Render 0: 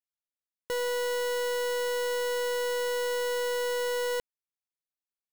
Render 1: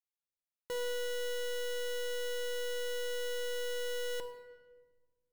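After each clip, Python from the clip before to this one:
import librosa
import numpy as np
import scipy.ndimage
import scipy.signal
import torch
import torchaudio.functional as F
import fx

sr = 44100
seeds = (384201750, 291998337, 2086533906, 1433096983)

y = fx.room_shoebox(x, sr, seeds[0], volume_m3=1300.0, walls='mixed', distance_m=0.8)
y = F.gain(torch.from_numpy(y), -7.5).numpy()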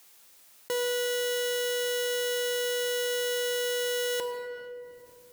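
y = fx.highpass(x, sr, hz=230.0, slope=6)
y = fx.high_shelf(y, sr, hz=5200.0, db=4.5)
y = fx.env_flatten(y, sr, amount_pct=50)
y = F.gain(torch.from_numpy(y), 7.5).numpy()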